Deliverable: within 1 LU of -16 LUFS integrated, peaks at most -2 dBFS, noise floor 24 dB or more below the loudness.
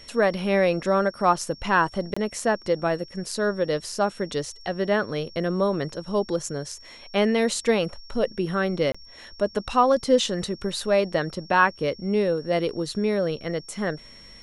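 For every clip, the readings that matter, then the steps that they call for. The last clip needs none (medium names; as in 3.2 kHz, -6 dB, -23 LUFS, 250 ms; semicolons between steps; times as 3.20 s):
dropouts 2; longest dropout 25 ms; steady tone 5.5 kHz; tone level -46 dBFS; loudness -24.5 LUFS; peak level -5.0 dBFS; loudness target -16.0 LUFS
-> interpolate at 2.14/8.92 s, 25 ms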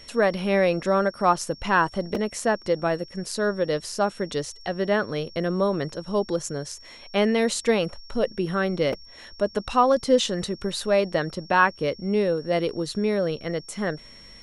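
dropouts 0; steady tone 5.5 kHz; tone level -46 dBFS
-> band-stop 5.5 kHz, Q 30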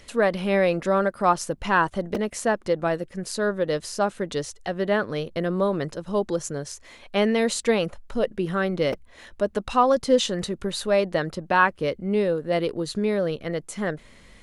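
steady tone not found; loudness -24.5 LUFS; peak level -5.5 dBFS; loudness target -16.0 LUFS
-> trim +8.5 dB; peak limiter -2 dBFS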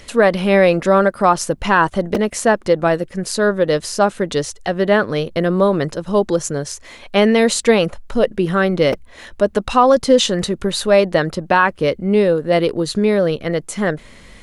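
loudness -16.5 LUFS; peak level -2.0 dBFS; noise floor -42 dBFS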